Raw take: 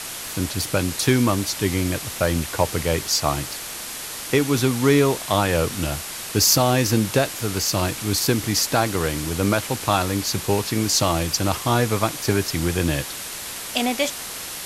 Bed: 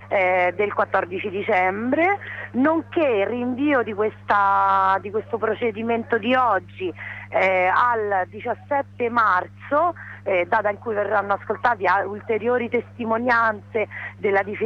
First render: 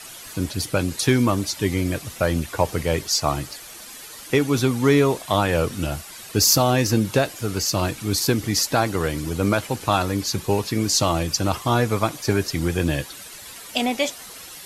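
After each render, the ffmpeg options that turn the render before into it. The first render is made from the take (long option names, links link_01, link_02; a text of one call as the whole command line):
ffmpeg -i in.wav -af "afftdn=noise_reduction=11:noise_floor=-33" out.wav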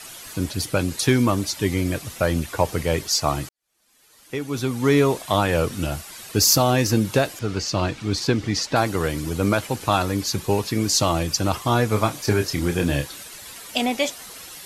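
ffmpeg -i in.wav -filter_complex "[0:a]asettb=1/sr,asplit=3[link_01][link_02][link_03];[link_01]atrim=end=7.394[link_04];[link_02]atrim=start=7.39:end=8.76,asetpts=PTS-STARTPTS,afade=type=in:duration=0.004:curve=qsin,afade=type=out:start_time=1.366:duration=0.004:curve=qsin,lowpass=5000[link_05];[link_03]atrim=start=8.756[link_06];[link_04][link_05]acrossfade=duration=0.004:curve1=hsin:curve2=qsin[link_07];[link_07][link_06]acrossfade=duration=0.004:curve1=qsin:curve2=hsin,asettb=1/sr,asplit=3[link_08][link_09][link_10];[link_08]atrim=end=11.894[link_11];[link_09]atrim=start=11.89:end=13.23,asetpts=PTS-STARTPTS,afade=type=in:duration=0.004:curve=qsin,afade=type=out:start_time=1.336:duration=0.004:curve=qsin,asplit=2[link_12][link_13];[link_13]adelay=28,volume=-7.5dB[link_14];[link_12][link_14]amix=inputs=2:normalize=0,atrim=end_sample=59094[link_15];[link_10]atrim=start=13.226[link_16];[link_11][link_15]acrossfade=duration=0.004:curve1=hsin:curve2=qsin[link_17];[link_17][link_16]acrossfade=duration=0.004:curve1=qsin:curve2=hsin,asplit=2[link_18][link_19];[link_18]atrim=end=3.49,asetpts=PTS-STARTPTS,afade=type=out:start_time=3.486:duration=0.004:curve=hsin[link_20];[link_19]atrim=start=3.49,asetpts=PTS-STARTPTS,afade=type=in:duration=1.51:curve=qua[link_21];[link_20][link_21]concat=n=2:v=0:a=1" out.wav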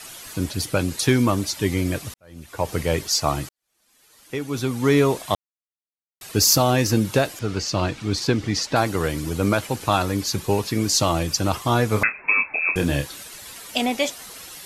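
ffmpeg -i in.wav -filter_complex "[0:a]asettb=1/sr,asplit=3[link_01][link_02][link_03];[link_01]atrim=end=12.034[link_04];[link_02]atrim=start=12.03:end=12.76,asetpts=PTS-STARTPTS,afade=type=in:duration=0.004:curve=qsin,afade=type=out:start_time=0.726:duration=0.004:curve=qsin,lowpass=frequency=2300:width_type=q:width=0.5098,lowpass=frequency=2300:width_type=q:width=0.6013,lowpass=frequency=2300:width_type=q:width=0.9,lowpass=frequency=2300:width_type=q:width=2.563,afreqshift=-2700[link_05];[link_03]atrim=start=12.756[link_06];[link_04][link_05]acrossfade=duration=0.004:curve1=hsin:curve2=qsin[link_07];[link_07][link_06]acrossfade=duration=0.004:curve1=qsin:curve2=hsin,asplit=4[link_08][link_09][link_10][link_11];[link_08]atrim=end=2.14,asetpts=PTS-STARTPTS,afade=type=out:start_time=2.136:duration=0.004:curve=hsin[link_12];[link_09]atrim=start=2.14:end=5.35,asetpts=PTS-STARTPTS,afade=type=in:duration=0.61:curve=qua,afade=type=out:start_time=3.206:duration=0.004:curve=hsin[link_13];[link_10]atrim=start=5.35:end=6.21,asetpts=PTS-STARTPTS,volume=0[link_14];[link_11]atrim=start=6.21,asetpts=PTS-STARTPTS,afade=type=in:duration=0.004:curve=hsin[link_15];[link_12][link_13][link_14][link_15]concat=n=4:v=0:a=1" out.wav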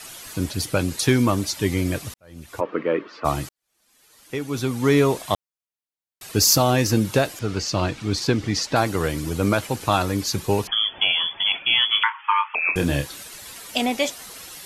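ffmpeg -i in.wav -filter_complex "[0:a]asplit=3[link_01][link_02][link_03];[link_01]afade=type=out:start_time=2.59:duration=0.02[link_04];[link_02]highpass=frequency=220:width=0.5412,highpass=frequency=220:width=1.3066,equalizer=frequency=310:width_type=q:width=4:gain=6,equalizer=frequency=490:width_type=q:width=4:gain=3,equalizer=frequency=780:width_type=q:width=4:gain=-9,equalizer=frequency=1200:width_type=q:width=4:gain=8,equalizer=frequency=2100:width_type=q:width=4:gain=-3,lowpass=frequency=2400:width=0.5412,lowpass=frequency=2400:width=1.3066,afade=type=in:start_time=2.59:duration=0.02,afade=type=out:start_time=3.24:duration=0.02[link_05];[link_03]afade=type=in:start_time=3.24:duration=0.02[link_06];[link_04][link_05][link_06]amix=inputs=3:normalize=0,asettb=1/sr,asplit=3[link_07][link_08][link_09];[link_07]atrim=end=10.674[link_10];[link_08]atrim=start=10.67:end=12.55,asetpts=PTS-STARTPTS,afade=type=in:duration=0.004:curve=qsin,afade=type=out:start_time=1.876:duration=0.004:curve=qsin,lowpass=frequency=3000:width_type=q:width=0.5098,lowpass=frequency=3000:width_type=q:width=0.6013,lowpass=frequency=3000:width_type=q:width=0.9,lowpass=frequency=3000:width_type=q:width=2.563,afreqshift=-3500[link_11];[link_09]atrim=start=12.546[link_12];[link_10][link_11]acrossfade=duration=0.004:curve1=hsin:curve2=qsin[link_13];[link_13][link_12]acrossfade=duration=0.004:curve1=qsin:curve2=hsin" out.wav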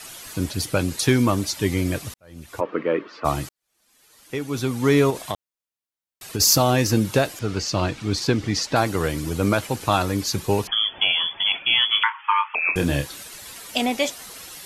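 ffmpeg -i in.wav -filter_complex "[0:a]asettb=1/sr,asplit=3[link_01][link_02][link_03];[link_01]atrim=end=5.104[link_04];[link_02]atrim=start=5.1:end=6.4,asetpts=PTS-STARTPTS,afade=type=in:duration=0.004:curve=qsin,afade=type=out:start_time=1.296:duration=0.004:curve=qsin,acompressor=threshold=-21dB:ratio=6:attack=3.2:release=140:knee=1:detection=peak[link_05];[link_03]atrim=start=6.396[link_06];[link_04][link_05]acrossfade=duration=0.004:curve1=hsin:curve2=qsin[link_07];[link_07][link_06]acrossfade=duration=0.004:curve1=qsin:curve2=hsin" out.wav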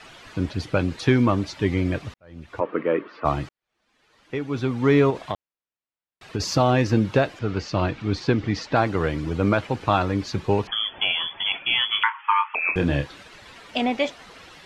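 ffmpeg -i in.wav -af "lowpass=2900" out.wav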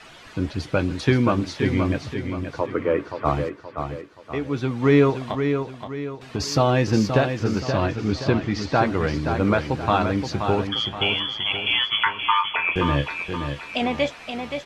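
ffmpeg -i in.wav -filter_complex "[0:a]asplit=2[link_01][link_02];[link_02]adelay=14,volume=-12dB[link_03];[link_01][link_03]amix=inputs=2:normalize=0,aecho=1:1:525|1050|1575|2100|2625:0.447|0.188|0.0788|0.0331|0.0139" out.wav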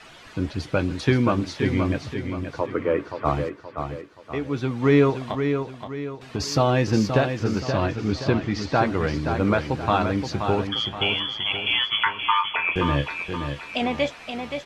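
ffmpeg -i in.wav -af "volume=-1dB" out.wav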